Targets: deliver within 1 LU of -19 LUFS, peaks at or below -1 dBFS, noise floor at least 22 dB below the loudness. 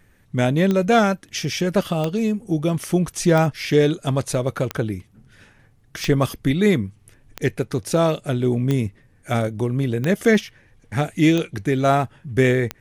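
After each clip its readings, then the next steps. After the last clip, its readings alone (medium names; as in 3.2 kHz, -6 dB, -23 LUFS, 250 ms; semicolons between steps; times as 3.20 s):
clicks found 10; loudness -21.0 LUFS; peak level -4.0 dBFS; loudness target -19.0 LUFS
-> de-click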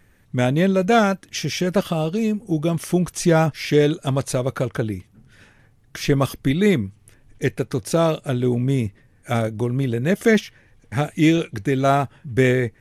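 clicks found 0; loudness -21.0 LUFS; peak level -4.0 dBFS; loudness target -19.0 LUFS
-> trim +2 dB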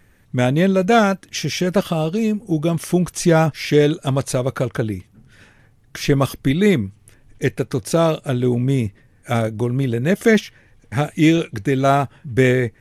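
loudness -19.0 LUFS; peak level -2.0 dBFS; noise floor -54 dBFS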